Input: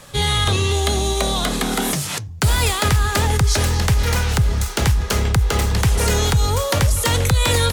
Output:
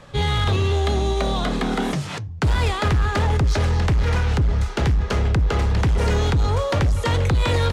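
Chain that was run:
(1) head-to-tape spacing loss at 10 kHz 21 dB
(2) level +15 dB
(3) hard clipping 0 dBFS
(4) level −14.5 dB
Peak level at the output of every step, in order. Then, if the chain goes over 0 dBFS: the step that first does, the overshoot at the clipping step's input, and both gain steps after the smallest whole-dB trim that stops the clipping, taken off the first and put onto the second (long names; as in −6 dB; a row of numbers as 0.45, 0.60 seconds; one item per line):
−8.5, +6.5, 0.0, −14.5 dBFS
step 2, 6.5 dB
step 2 +8 dB, step 4 −7.5 dB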